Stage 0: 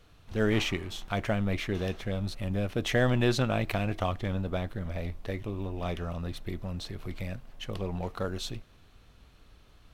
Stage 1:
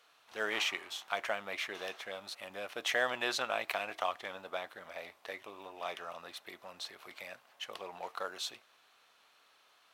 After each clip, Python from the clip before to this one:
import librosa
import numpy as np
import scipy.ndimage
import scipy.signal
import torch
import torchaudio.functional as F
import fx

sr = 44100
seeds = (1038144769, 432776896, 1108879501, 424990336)

y = scipy.signal.sosfilt(scipy.signal.cheby1(2, 1.0, 860.0, 'highpass', fs=sr, output='sos'), x)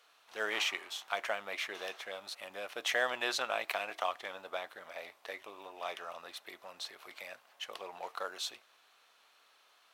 y = fx.bass_treble(x, sr, bass_db=-8, treble_db=1)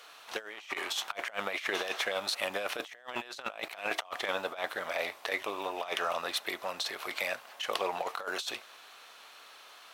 y = fx.over_compress(x, sr, threshold_db=-43.0, ratio=-0.5)
y = y * librosa.db_to_amplitude(8.5)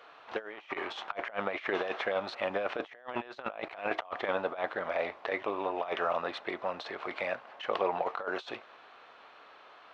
y = fx.spacing_loss(x, sr, db_at_10k=42)
y = y * librosa.db_to_amplitude(6.0)